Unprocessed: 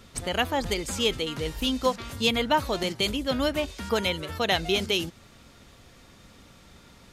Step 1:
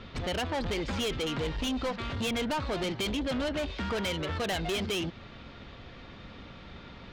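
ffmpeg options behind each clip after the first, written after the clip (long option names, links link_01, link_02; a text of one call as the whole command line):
ffmpeg -i in.wav -af "lowpass=frequency=3900:width=0.5412,lowpass=frequency=3900:width=1.3066,acompressor=threshold=-28dB:ratio=2,asoftclip=type=tanh:threshold=-34dB,volume=6dB" out.wav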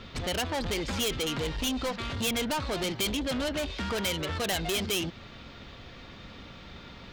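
ffmpeg -i in.wav -af "aemphasis=mode=production:type=50kf" out.wav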